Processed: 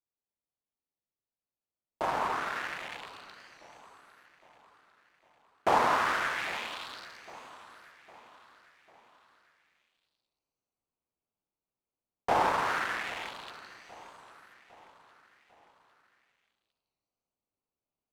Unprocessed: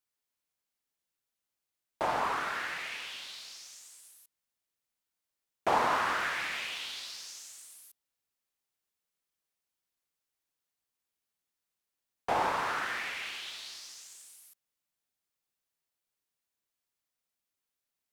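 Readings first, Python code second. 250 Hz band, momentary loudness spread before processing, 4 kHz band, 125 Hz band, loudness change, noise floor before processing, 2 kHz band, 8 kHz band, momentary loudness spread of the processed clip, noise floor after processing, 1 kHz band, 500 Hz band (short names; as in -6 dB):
+2.5 dB, 20 LU, -2.5 dB, +2.5 dB, +2.5 dB, under -85 dBFS, +0.5 dB, -4.5 dB, 23 LU, under -85 dBFS, +2.0 dB, +2.5 dB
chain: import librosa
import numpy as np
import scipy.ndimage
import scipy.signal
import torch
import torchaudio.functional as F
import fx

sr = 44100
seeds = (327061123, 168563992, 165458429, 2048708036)

y = fx.wiener(x, sr, points=25)
y = fx.rider(y, sr, range_db=10, speed_s=2.0)
y = fx.echo_feedback(y, sr, ms=805, feedback_pct=49, wet_db=-18.0)
y = fx.record_warp(y, sr, rpm=45.0, depth_cents=100.0)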